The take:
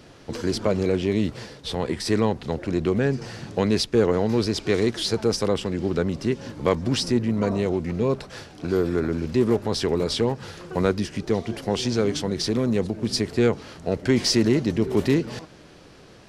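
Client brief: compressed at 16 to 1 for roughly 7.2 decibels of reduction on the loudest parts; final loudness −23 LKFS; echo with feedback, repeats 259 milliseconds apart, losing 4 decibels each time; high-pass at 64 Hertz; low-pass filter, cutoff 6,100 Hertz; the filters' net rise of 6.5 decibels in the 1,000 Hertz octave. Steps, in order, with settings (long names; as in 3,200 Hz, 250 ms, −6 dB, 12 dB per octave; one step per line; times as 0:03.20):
high-pass filter 64 Hz
low-pass filter 6,100 Hz
parametric band 1,000 Hz +8 dB
downward compressor 16 to 1, threshold −20 dBFS
repeating echo 259 ms, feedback 63%, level −4 dB
level +2 dB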